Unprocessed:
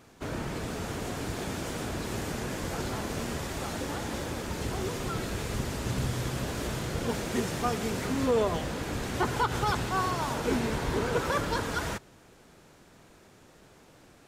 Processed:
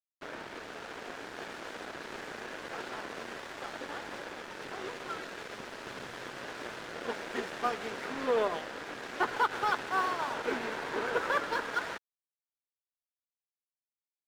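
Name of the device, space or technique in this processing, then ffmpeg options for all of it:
pocket radio on a weak battery: -af "highpass=390,lowpass=3700,aeval=exprs='sgn(val(0))*max(abs(val(0))-0.0075,0)':channel_layout=same,equalizer=frequency=1600:width_type=o:width=0.57:gain=4.5"

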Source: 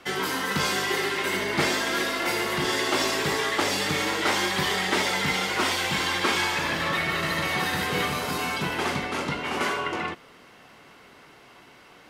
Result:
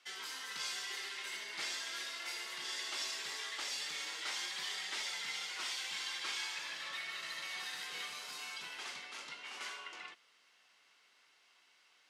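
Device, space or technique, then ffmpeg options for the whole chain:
piezo pickup straight into a mixer: -af "lowpass=5800,aderivative,volume=-5dB"

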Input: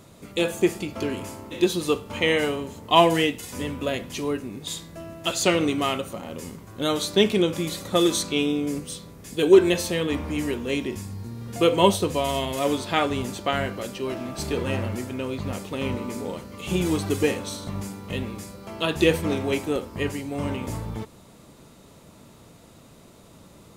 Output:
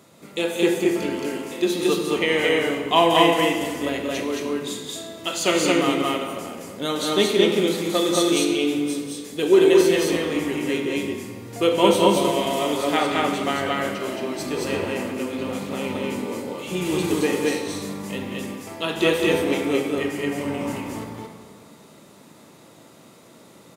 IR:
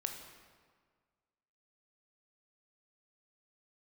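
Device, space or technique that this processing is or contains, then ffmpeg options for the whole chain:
stadium PA: -filter_complex "[0:a]highpass=180,equalizer=frequency=2000:width_type=o:width=0.23:gain=3,aecho=1:1:186.6|221.6:0.355|0.891[link_01];[1:a]atrim=start_sample=2205[link_02];[link_01][link_02]afir=irnorm=-1:irlink=0"

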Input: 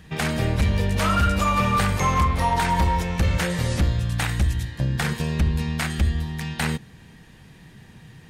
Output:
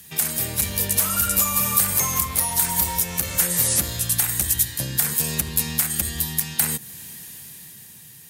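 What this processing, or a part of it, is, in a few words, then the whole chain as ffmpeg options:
FM broadcast chain: -filter_complex "[0:a]highpass=78,dynaudnorm=framelen=110:gausssize=17:maxgain=7.5dB,acrossover=split=260|2000|6300[link_01][link_02][link_03][link_04];[link_01]acompressor=threshold=-21dB:ratio=4[link_05];[link_02]acompressor=threshold=-22dB:ratio=4[link_06];[link_03]acompressor=threshold=-37dB:ratio=4[link_07];[link_04]acompressor=threshold=-38dB:ratio=4[link_08];[link_05][link_06][link_07][link_08]amix=inputs=4:normalize=0,aemphasis=mode=production:type=75fm,alimiter=limit=-9.5dB:level=0:latency=1:release=380,asoftclip=type=hard:threshold=-13dB,lowpass=frequency=15000:width=0.5412,lowpass=frequency=15000:width=1.3066,aemphasis=mode=production:type=75fm,volume=-6.5dB"

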